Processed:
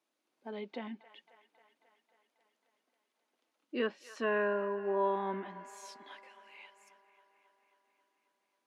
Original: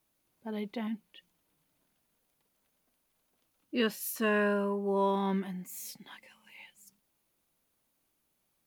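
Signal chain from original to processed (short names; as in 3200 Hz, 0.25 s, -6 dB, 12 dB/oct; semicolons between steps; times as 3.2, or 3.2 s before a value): treble ducked by the level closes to 2200 Hz, closed at -27 dBFS; HPF 260 Hz 24 dB/oct; air absorption 69 m; band-limited delay 0.27 s, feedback 69%, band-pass 1400 Hz, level -14 dB; gain -1.5 dB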